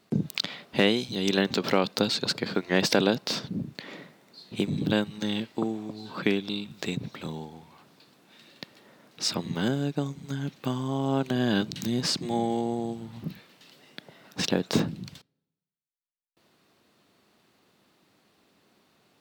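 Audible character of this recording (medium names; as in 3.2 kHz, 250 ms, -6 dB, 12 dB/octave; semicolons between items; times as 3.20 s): noise floor -81 dBFS; spectral tilt -5.0 dB/octave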